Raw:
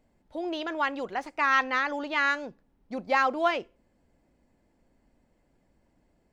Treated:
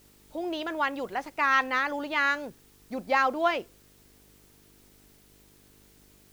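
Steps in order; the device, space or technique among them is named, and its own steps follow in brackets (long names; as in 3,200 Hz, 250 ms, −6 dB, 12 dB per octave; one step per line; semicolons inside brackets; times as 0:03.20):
video cassette with head-switching buzz (hum with harmonics 50 Hz, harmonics 9, −62 dBFS −2 dB per octave; white noise bed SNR 30 dB)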